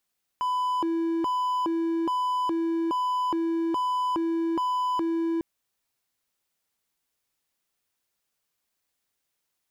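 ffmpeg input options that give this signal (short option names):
-f lavfi -i "aevalsrc='0.0841*(1-4*abs(mod((665.5*t+334.5/1.2*(0.5-abs(mod(1.2*t,1)-0.5)))+0.25,1)-0.5))':d=5:s=44100"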